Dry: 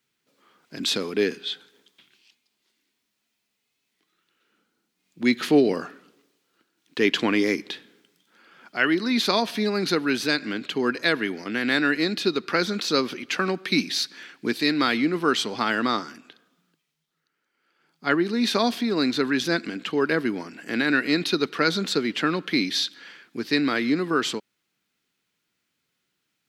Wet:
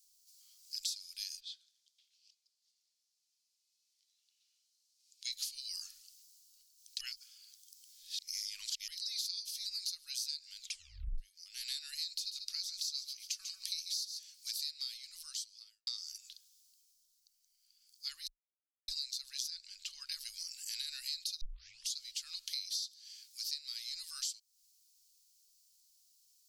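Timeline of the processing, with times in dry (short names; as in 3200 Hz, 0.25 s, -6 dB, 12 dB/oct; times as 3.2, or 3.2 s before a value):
1.39–5.3 band-pass 570 Hz -> 3300 Hz, Q 0.82
7.01–8.88 reverse
10.6 tape stop 0.58 s
12.09–14.3 echo 0.14 s -11 dB
14.84–15.87 fade out quadratic
18.28–18.88 mute
19.5–20.12 LPF 2700 Hz 6 dB/oct
21.41 tape start 0.57 s
whole clip: inverse Chebyshev band-stop 140–710 Hz, stop band 80 dB; band shelf 2300 Hz -15.5 dB; compressor 6:1, threshold -51 dBFS; gain +13 dB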